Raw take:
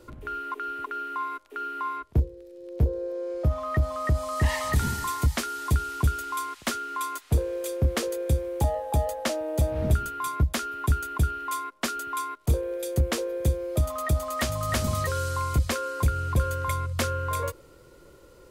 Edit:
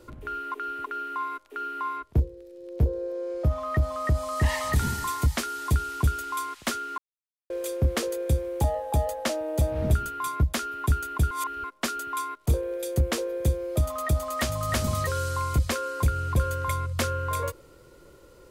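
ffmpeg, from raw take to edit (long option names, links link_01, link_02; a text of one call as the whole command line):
ffmpeg -i in.wav -filter_complex "[0:a]asplit=5[link_01][link_02][link_03][link_04][link_05];[link_01]atrim=end=6.98,asetpts=PTS-STARTPTS,afade=type=out:start_time=6.976:duration=0.004:curve=hsin[link_06];[link_02]atrim=start=6.98:end=7.5,asetpts=PTS-STARTPTS,volume=0[link_07];[link_03]atrim=start=7.5:end=11.312,asetpts=PTS-STARTPTS,afade=type=in:duration=0.004:curve=hsin[link_08];[link_04]atrim=start=11.308:end=11.642,asetpts=PTS-STARTPTS,areverse[link_09];[link_05]atrim=start=11.638[link_10];[link_06][link_07][link_08]concat=n=3:v=0:a=1[link_11];[link_11][link_09]acrossfade=duration=0.004:curve1=hsin:curve2=hsin[link_12];[link_12][link_10]acrossfade=duration=0.004:curve1=hsin:curve2=hsin" out.wav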